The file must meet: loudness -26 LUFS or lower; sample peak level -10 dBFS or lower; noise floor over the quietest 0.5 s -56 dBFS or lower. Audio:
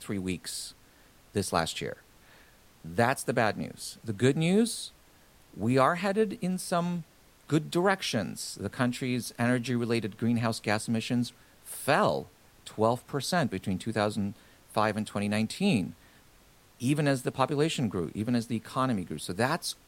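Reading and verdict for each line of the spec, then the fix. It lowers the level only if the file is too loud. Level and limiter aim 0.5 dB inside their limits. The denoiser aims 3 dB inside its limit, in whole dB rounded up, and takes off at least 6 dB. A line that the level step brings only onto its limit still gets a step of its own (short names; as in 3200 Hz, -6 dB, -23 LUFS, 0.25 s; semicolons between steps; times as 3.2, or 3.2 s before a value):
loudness -29.5 LUFS: OK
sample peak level -9.0 dBFS: fail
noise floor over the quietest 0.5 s -59 dBFS: OK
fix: limiter -10.5 dBFS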